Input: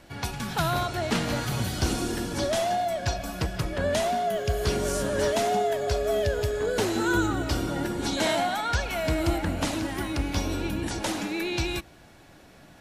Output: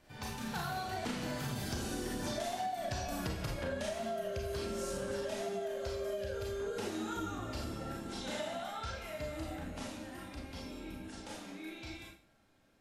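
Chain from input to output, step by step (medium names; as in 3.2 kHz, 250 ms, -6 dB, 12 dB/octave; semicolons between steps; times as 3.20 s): Doppler pass-by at 3.23 s, 18 m/s, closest 9.3 m; Schroeder reverb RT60 0.39 s, combs from 28 ms, DRR -2 dB; compression 16:1, threshold -37 dBFS, peak gain reduction 17.5 dB; trim +3 dB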